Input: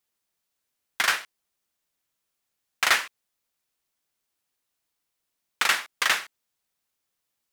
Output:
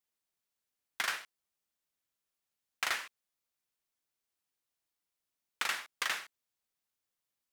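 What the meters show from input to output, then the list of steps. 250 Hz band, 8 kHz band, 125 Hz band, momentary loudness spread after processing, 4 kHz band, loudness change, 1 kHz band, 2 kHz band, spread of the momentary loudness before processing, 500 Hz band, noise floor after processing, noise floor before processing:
-11.0 dB, -11.5 dB, n/a, 7 LU, -11.5 dB, -11.5 dB, -11.5 dB, -11.5 dB, 5 LU, -11.5 dB, under -85 dBFS, -81 dBFS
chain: compressor, threshold -21 dBFS, peak gain reduction 6.5 dB; gain -8 dB

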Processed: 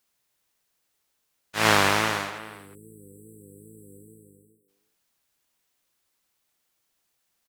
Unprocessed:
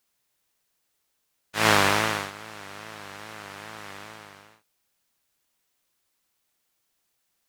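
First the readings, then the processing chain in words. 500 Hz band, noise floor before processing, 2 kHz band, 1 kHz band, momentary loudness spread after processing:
0.0 dB, -75 dBFS, 0.0 dB, 0.0 dB, 16 LU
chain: spectral delete 2.39–4.68, 500–7600 Hz; speakerphone echo 0.36 s, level -14 dB

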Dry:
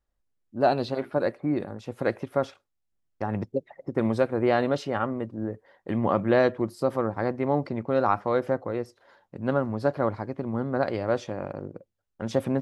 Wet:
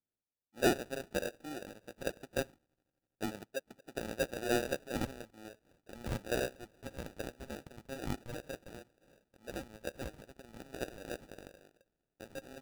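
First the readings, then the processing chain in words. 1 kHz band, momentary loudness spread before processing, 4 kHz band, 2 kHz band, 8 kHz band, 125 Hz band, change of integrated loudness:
-16.0 dB, 11 LU, -2.0 dB, -7.0 dB, n/a, -14.5 dB, -12.5 dB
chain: band-pass sweep 870 Hz -> 1900 Hz, 4.89–6.6; thin delay 82 ms, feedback 83%, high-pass 4100 Hz, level -16 dB; sample-and-hold 41×; gain -2.5 dB

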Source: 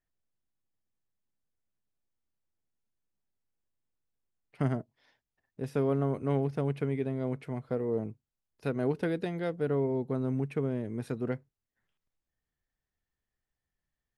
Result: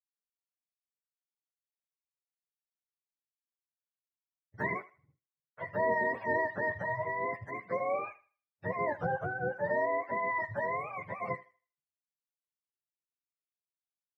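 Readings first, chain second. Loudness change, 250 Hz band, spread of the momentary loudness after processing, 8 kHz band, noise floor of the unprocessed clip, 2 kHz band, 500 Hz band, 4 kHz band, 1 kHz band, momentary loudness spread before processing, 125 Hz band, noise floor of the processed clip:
-1.0 dB, -12.0 dB, 9 LU, n/a, under -85 dBFS, +12.5 dB, -2.0 dB, under -10 dB, +10.0 dB, 7 LU, -12.0 dB, under -85 dBFS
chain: spectrum mirrored in octaves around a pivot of 510 Hz; expander -57 dBFS; thinning echo 79 ms, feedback 28%, high-pass 440 Hz, level -17 dB

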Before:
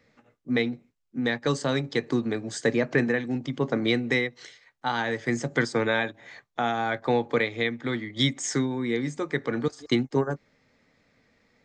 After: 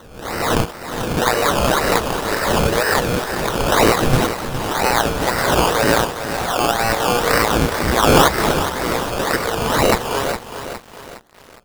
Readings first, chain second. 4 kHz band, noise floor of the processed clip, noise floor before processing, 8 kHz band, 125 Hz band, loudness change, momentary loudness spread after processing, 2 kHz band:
+11.0 dB, -42 dBFS, -69 dBFS, +15.0 dB, +9.0 dB, +9.5 dB, 9 LU, +9.0 dB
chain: spectral swells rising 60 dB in 1.24 s; high shelf 5900 Hz -5 dB; in parallel at -8 dB: bit-crush 5-bit; on the sum: band shelf 3800 Hz +12.5 dB 1.2 oct; wavefolder -8.5 dBFS; HPF 530 Hz 24 dB/oct; decimation with a swept rate 18×, swing 60% 2 Hz; lo-fi delay 0.412 s, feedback 55%, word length 6-bit, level -9 dB; gain +4 dB

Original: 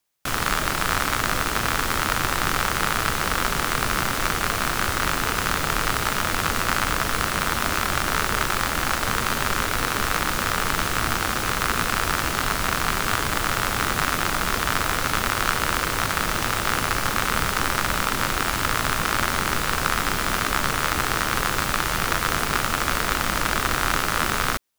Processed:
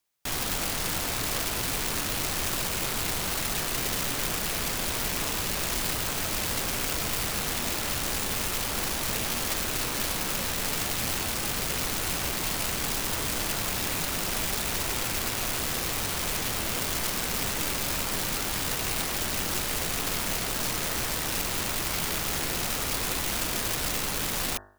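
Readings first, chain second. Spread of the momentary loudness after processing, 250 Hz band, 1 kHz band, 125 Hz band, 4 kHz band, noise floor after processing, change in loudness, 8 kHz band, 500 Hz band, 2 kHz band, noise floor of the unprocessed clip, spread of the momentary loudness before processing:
1 LU, -5.5 dB, -12.0 dB, -6.5 dB, -3.5 dB, -31 dBFS, -5.0 dB, -1.0 dB, -5.5 dB, -10.0 dB, -26 dBFS, 1 LU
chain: rattling part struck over -27 dBFS, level -12 dBFS; wrapped overs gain 19.5 dB; de-hum 49.94 Hz, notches 38; gain -3 dB

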